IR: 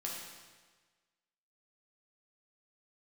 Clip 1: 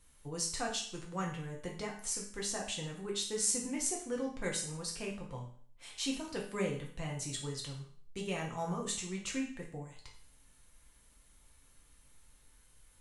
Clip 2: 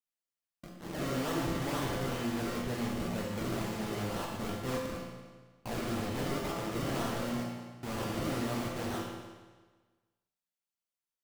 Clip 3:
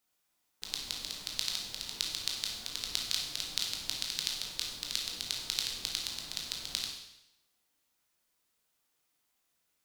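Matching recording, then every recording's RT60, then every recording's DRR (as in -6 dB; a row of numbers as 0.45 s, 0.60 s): 2; 0.55 s, 1.4 s, 0.85 s; -1.5 dB, -3.5 dB, -1.5 dB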